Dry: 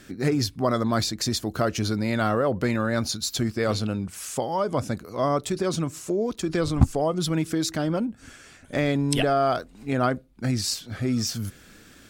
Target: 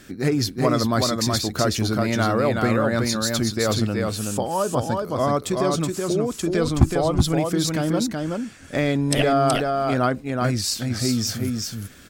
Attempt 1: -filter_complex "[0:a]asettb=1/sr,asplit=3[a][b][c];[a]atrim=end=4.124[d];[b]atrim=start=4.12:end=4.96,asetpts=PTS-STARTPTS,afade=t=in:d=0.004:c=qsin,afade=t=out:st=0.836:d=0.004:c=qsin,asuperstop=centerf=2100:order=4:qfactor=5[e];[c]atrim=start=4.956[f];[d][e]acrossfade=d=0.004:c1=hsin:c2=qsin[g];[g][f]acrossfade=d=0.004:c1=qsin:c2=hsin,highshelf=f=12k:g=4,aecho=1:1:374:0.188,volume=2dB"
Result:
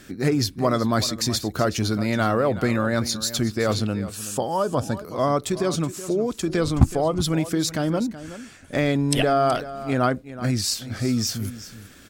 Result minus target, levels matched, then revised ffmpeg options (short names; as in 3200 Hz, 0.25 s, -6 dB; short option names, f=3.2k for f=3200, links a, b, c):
echo-to-direct -11 dB
-filter_complex "[0:a]asettb=1/sr,asplit=3[a][b][c];[a]atrim=end=4.124[d];[b]atrim=start=4.12:end=4.96,asetpts=PTS-STARTPTS,afade=t=in:d=0.004:c=qsin,afade=t=out:st=0.836:d=0.004:c=qsin,asuperstop=centerf=2100:order=4:qfactor=5[e];[c]atrim=start=4.956[f];[d][e]acrossfade=d=0.004:c1=hsin:c2=qsin[g];[g][f]acrossfade=d=0.004:c1=qsin:c2=hsin,highshelf=f=12k:g=4,aecho=1:1:374:0.668,volume=2dB"